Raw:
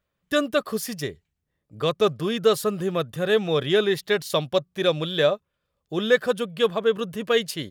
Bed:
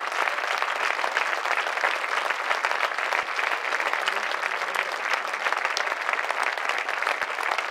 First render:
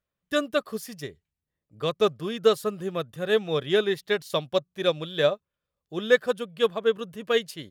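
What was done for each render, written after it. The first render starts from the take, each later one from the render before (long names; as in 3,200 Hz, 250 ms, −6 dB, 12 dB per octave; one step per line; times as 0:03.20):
expander for the loud parts 1.5 to 1, over −30 dBFS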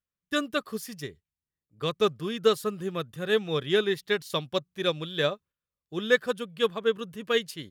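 noise gate −48 dBFS, range −8 dB
parametric band 630 Hz −7 dB 0.71 octaves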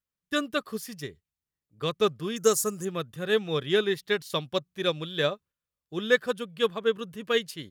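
0:02.36–0:02.85: high shelf with overshoot 4,900 Hz +11 dB, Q 3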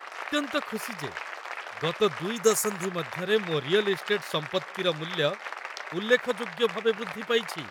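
mix in bed −12 dB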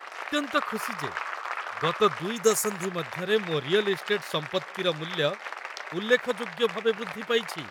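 0:00.55–0:02.14: parametric band 1,200 Hz +7.5 dB 0.82 octaves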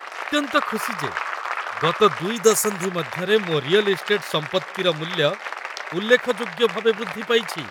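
level +6 dB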